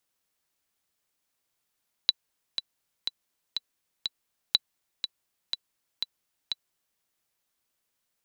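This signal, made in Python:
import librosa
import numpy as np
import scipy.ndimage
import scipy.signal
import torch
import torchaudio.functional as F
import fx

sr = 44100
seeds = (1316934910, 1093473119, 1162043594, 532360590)

y = fx.click_track(sr, bpm=122, beats=5, bars=2, hz=3960.0, accent_db=9.0, level_db=-6.5)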